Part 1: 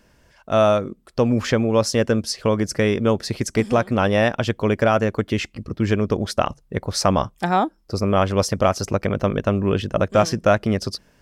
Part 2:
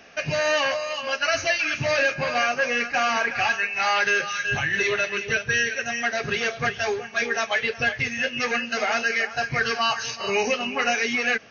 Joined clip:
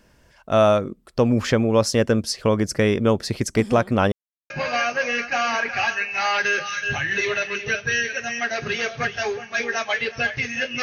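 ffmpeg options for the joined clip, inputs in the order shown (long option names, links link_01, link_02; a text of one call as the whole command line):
ffmpeg -i cue0.wav -i cue1.wav -filter_complex "[0:a]apad=whole_dur=10.82,atrim=end=10.82,asplit=2[link_01][link_02];[link_01]atrim=end=4.12,asetpts=PTS-STARTPTS,afade=type=out:start_time=4.116:duration=0.004:curve=hsin[link_03];[link_02]atrim=start=4.12:end=4.5,asetpts=PTS-STARTPTS,volume=0[link_04];[1:a]atrim=start=2.12:end=8.44,asetpts=PTS-STARTPTS,afade=type=in:duration=0.004:curve=hsin[link_05];[link_03][link_04][link_05]concat=n=3:v=0:a=1" out.wav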